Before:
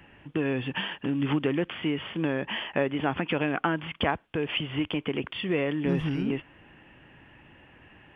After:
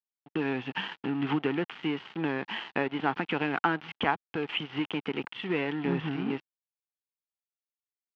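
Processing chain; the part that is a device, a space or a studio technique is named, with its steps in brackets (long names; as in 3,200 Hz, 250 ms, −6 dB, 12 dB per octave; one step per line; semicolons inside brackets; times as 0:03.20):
blown loudspeaker (dead-zone distortion −39 dBFS; loudspeaker in its box 160–4,000 Hz, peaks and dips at 580 Hz −8 dB, 850 Hz +5 dB, 1,400 Hz +3 dB)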